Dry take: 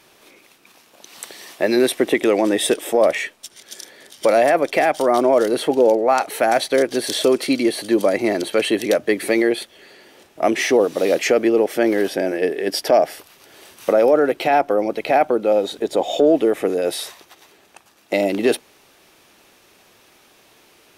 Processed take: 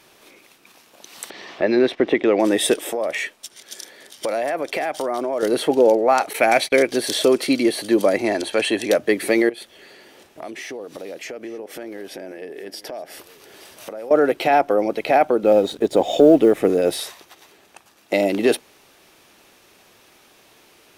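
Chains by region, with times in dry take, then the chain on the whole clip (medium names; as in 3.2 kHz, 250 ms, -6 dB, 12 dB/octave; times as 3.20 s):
1.30–2.40 s: gate -31 dBFS, range -13 dB + distance through air 210 m + upward compressor, threshold -21 dBFS
2.90–5.43 s: compression 4:1, threshold -20 dBFS + bass shelf 170 Hz -5.5 dB
6.33–6.92 s: gate -33 dBFS, range -20 dB + peaking EQ 2.3 kHz +12.5 dB 0.25 oct
8.21–8.91 s: low-pass 11 kHz 24 dB/octave + peaking EQ 160 Hz -14.5 dB 0.39 oct + comb 1.2 ms, depth 30%
9.49–14.11 s: compression 4:1, threshold -33 dBFS + delay 871 ms -18 dB
15.43–17.01 s: companding laws mixed up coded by A + bass shelf 290 Hz +9 dB
whole clip: none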